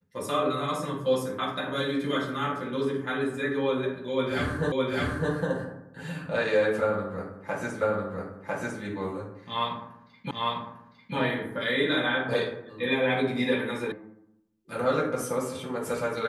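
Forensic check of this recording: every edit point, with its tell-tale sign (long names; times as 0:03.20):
0:04.72: the same again, the last 0.61 s
0:07.81: the same again, the last 1 s
0:10.31: the same again, the last 0.85 s
0:13.92: cut off before it has died away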